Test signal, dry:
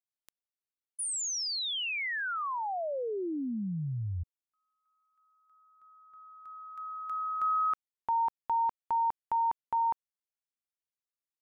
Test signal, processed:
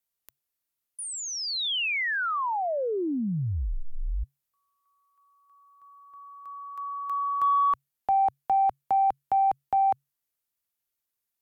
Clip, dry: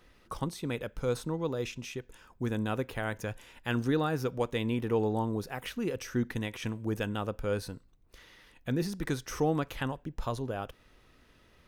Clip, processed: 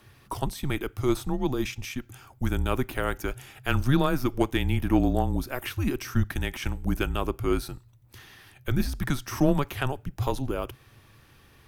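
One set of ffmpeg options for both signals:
-filter_complex "[0:a]afreqshift=-140,equalizer=f=14k:w=0.84:g=10.5,aeval=exprs='0.168*(cos(1*acos(clip(val(0)/0.168,-1,1)))-cos(1*PI/2))+0.0133*(cos(3*acos(clip(val(0)/0.168,-1,1)))-cos(3*PI/2))':c=same,acrossover=split=3900[a][b];[b]acompressor=threshold=-45dB:ratio=4:attack=1:release=60[c];[a][c]amix=inputs=2:normalize=0,volume=8dB"

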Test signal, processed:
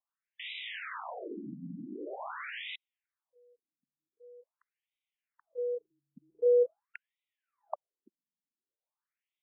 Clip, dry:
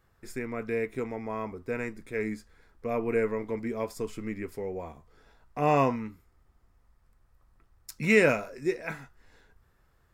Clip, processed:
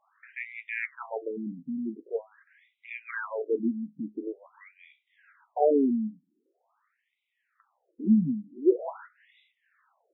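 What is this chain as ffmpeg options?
-af "afftfilt=real='re*between(b*sr/1024,200*pow(2800/200,0.5+0.5*sin(2*PI*0.45*pts/sr))/1.41,200*pow(2800/200,0.5+0.5*sin(2*PI*0.45*pts/sr))*1.41)':imag='im*between(b*sr/1024,200*pow(2800/200,0.5+0.5*sin(2*PI*0.45*pts/sr))/1.41,200*pow(2800/200,0.5+0.5*sin(2*PI*0.45*pts/sr))*1.41)':win_size=1024:overlap=0.75,volume=7dB"

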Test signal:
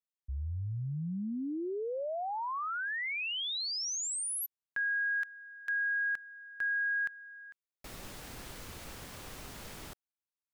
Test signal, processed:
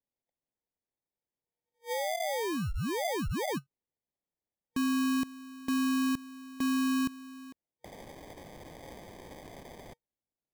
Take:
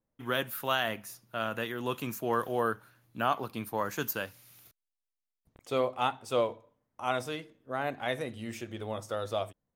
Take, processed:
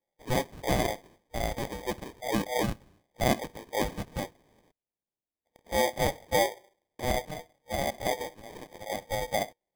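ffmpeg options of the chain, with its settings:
-af "afftfilt=real='re*between(b*sr/4096,480,4000)':imag='im*between(b*sr/4096,480,4000)':win_size=4096:overlap=0.75,acrusher=samples=32:mix=1:aa=0.000001,volume=3.5dB"

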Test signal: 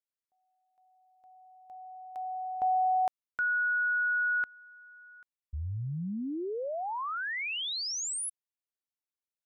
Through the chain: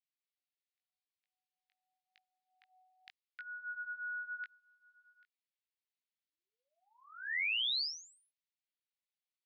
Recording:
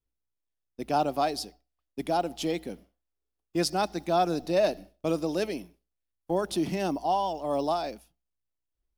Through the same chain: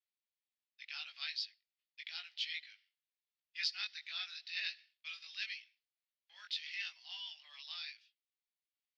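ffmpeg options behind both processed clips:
-af "asuperpass=centerf=3000:order=8:qfactor=1,flanger=delay=18:depth=2.6:speed=0.85,volume=3.5dB"

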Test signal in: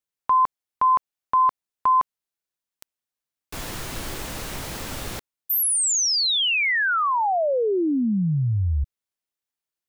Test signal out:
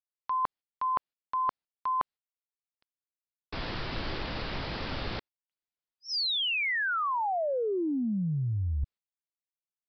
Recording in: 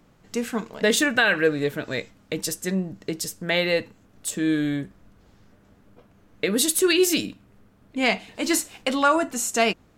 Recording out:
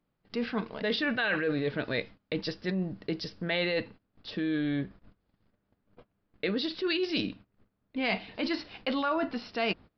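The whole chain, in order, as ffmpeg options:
-af "agate=range=-20dB:threshold=-51dB:ratio=16:release=165:detection=peak,areverse,acompressor=threshold=-30dB:ratio=6:attack=56:release=27:knee=1:detection=rms,areverse,aresample=11025,aresample=44100,volume=-1.5dB"

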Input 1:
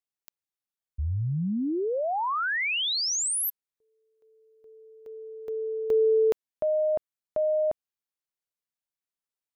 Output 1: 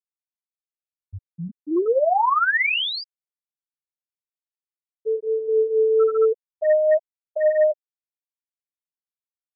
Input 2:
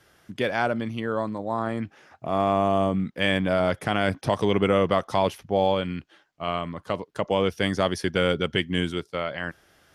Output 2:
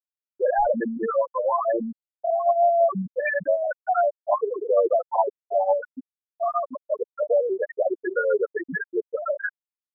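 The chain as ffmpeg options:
-filter_complex "[0:a]bandreject=f=76.86:t=h:w=4,bandreject=f=153.72:t=h:w=4,bandreject=f=230.58:t=h:w=4,bandreject=f=307.44:t=h:w=4,bandreject=f=384.3:t=h:w=4,asplit=2[a][b];[b]highpass=f=720:p=1,volume=34dB,asoftclip=type=tanh:threshold=-8dB[c];[a][c]amix=inputs=2:normalize=0,lowpass=f=2.4k:p=1,volume=-6dB,acrossover=split=340|640|2000[d][e][f][g];[d]asoftclip=type=tanh:threshold=-27dB[h];[h][e][f][g]amix=inputs=4:normalize=0,flanger=delay=8.4:depth=3.4:regen=24:speed=1.1:shape=sinusoidal,afftfilt=real='re*gte(hypot(re,im),0.501)':imag='im*gte(hypot(re,im),0.501)':win_size=1024:overlap=0.75"

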